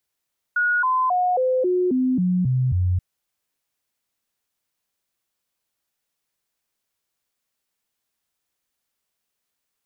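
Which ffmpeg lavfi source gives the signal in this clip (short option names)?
-f lavfi -i "aevalsrc='0.141*clip(min(mod(t,0.27),0.27-mod(t,0.27))/0.005,0,1)*sin(2*PI*1450*pow(2,-floor(t/0.27)/2)*mod(t,0.27))':d=2.43:s=44100"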